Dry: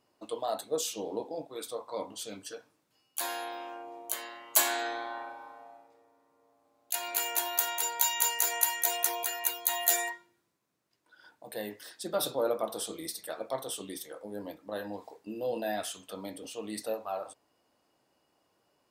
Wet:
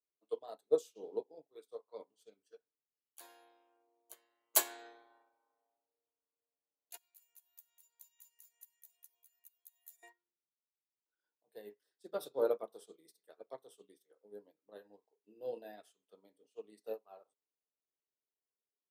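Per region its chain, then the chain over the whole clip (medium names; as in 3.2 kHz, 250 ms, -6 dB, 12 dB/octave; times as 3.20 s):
6.97–10.03 s: pre-emphasis filter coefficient 0.97 + compression 2:1, threshold -39 dBFS
whole clip: high-pass 120 Hz 24 dB/octave; peaking EQ 420 Hz +12.5 dB 0.38 oct; upward expansion 2.5:1, over -42 dBFS; trim -3 dB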